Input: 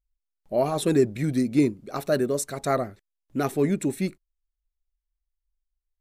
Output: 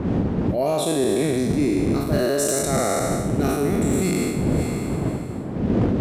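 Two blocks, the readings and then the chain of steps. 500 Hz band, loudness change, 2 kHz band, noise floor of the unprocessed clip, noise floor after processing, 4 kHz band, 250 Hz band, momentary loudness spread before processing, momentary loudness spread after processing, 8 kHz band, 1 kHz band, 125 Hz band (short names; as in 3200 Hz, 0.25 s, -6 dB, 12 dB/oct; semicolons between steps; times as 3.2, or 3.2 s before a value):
+4.0 dB, +3.5 dB, +5.5 dB, -83 dBFS, -28 dBFS, +7.5 dB, +5.5 dB, 9 LU, 5 LU, +10.0 dB, +4.0 dB, +8.5 dB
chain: spectral trails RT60 2.77 s; wind noise 220 Hz -19 dBFS; HPF 140 Hz 6 dB/oct; dynamic EQ 1100 Hz, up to -6 dB, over -36 dBFS, Q 1.1; reverse; compressor 5:1, threshold -27 dBFS, peak gain reduction 17 dB; reverse; wavefolder -19.5 dBFS; gain +8.5 dB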